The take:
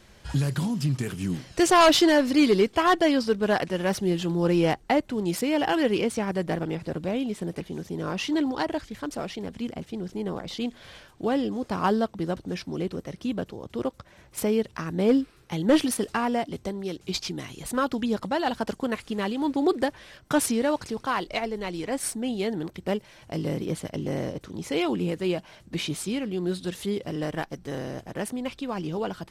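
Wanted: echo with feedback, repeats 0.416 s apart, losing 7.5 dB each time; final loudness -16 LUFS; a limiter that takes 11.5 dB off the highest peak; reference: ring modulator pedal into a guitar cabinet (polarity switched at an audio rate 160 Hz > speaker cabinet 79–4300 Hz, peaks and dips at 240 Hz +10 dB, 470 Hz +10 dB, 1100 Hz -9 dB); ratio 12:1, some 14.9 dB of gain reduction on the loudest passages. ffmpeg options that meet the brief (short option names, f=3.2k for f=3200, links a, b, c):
-af "acompressor=threshold=-30dB:ratio=12,alimiter=level_in=4.5dB:limit=-24dB:level=0:latency=1,volume=-4.5dB,aecho=1:1:416|832|1248|1664|2080:0.422|0.177|0.0744|0.0312|0.0131,aeval=exprs='val(0)*sgn(sin(2*PI*160*n/s))':c=same,highpass=79,equalizer=f=240:t=q:w=4:g=10,equalizer=f=470:t=q:w=4:g=10,equalizer=f=1.1k:t=q:w=4:g=-9,lowpass=f=4.3k:w=0.5412,lowpass=f=4.3k:w=1.3066,volume=18dB"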